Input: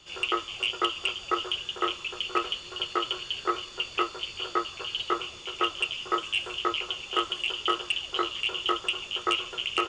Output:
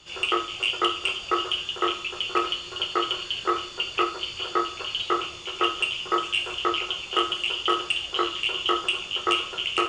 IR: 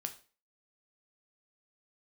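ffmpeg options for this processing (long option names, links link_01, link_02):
-filter_complex "[1:a]atrim=start_sample=2205,asetrate=38808,aresample=44100[link_01];[0:a][link_01]afir=irnorm=-1:irlink=0,volume=4dB"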